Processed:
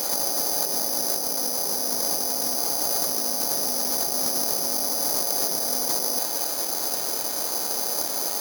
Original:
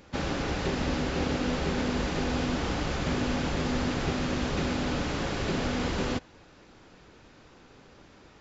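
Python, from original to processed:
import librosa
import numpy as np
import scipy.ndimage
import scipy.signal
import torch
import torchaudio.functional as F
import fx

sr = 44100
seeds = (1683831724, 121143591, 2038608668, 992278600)

y = fx.tracing_dist(x, sr, depth_ms=0.45)
y = scipy.signal.sosfilt(scipy.signal.butter(2, 240.0, 'highpass', fs=sr, output='sos'), y)
y = fx.peak_eq(y, sr, hz=710.0, db=13.0, octaves=1.2)
y = fx.over_compress(y, sr, threshold_db=-37.0, ratio=-1.0)
y = (np.kron(scipy.signal.resample_poly(y, 1, 8), np.eye(8)[0]) * 8)[:len(y)]
y = y * librosa.db_to_amplitude(3.5)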